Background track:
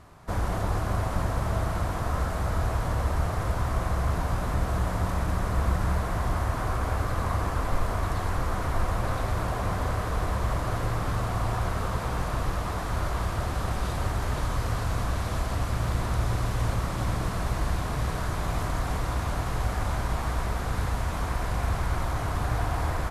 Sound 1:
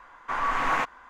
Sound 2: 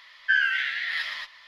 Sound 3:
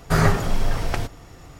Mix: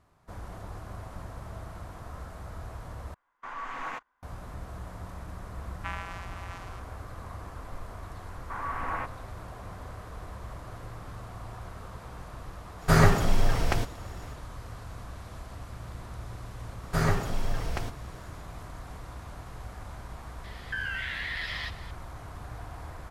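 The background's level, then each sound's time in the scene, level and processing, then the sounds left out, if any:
background track -14 dB
3.14 s: replace with 1 -11.5 dB + gate -39 dBFS, range -14 dB
5.55 s: add 2 -15.5 dB + vocoder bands 4, square 90.3 Hz
8.21 s: add 1 -7.5 dB + low-pass 1.9 kHz
12.78 s: add 3 -1.5 dB, fades 0.05 s
16.83 s: add 3 -8 dB
20.44 s: add 2 + compression, threshold -31 dBFS

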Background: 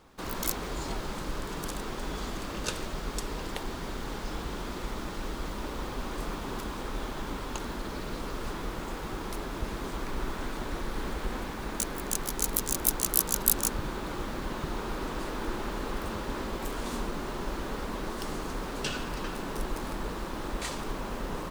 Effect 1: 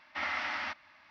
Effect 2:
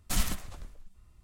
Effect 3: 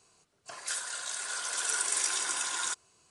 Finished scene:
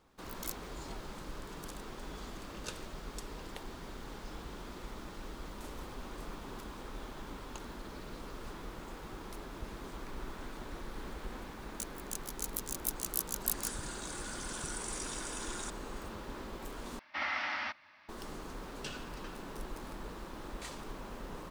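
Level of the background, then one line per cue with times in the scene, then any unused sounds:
background -9.5 dB
5.51 s: add 2 -8 dB + compression, threshold -42 dBFS
12.96 s: add 3 -13.5 dB + level flattener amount 50%
16.99 s: replace with 1 -1 dB + high-pass 71 Hz

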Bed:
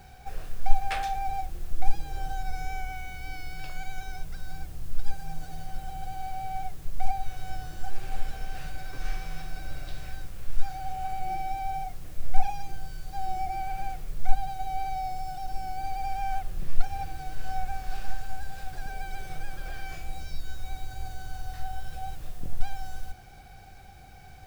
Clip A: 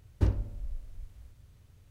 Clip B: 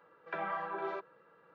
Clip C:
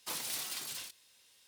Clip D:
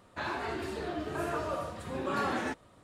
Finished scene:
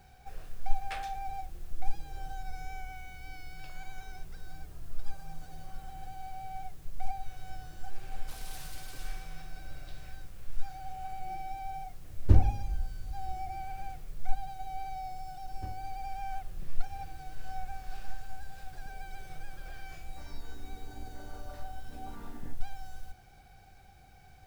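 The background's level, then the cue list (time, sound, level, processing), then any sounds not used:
bed -7.5 dB
3.57 s: add D -17 dB + compression, threshold -45 dBFS
8.21 s: add C -12.5 dB + two-band feedback delay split 2.4 kHz, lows 183 ms, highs 105 ms, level -3.5 dB
12.08 s: add A -2 dB + bass shelf 400 Hz +7 dB
15.41 s: add A -16.5 dB
19.99 s: add D -17 dB + vocoder on a held chord minor triad, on G3
not used: B

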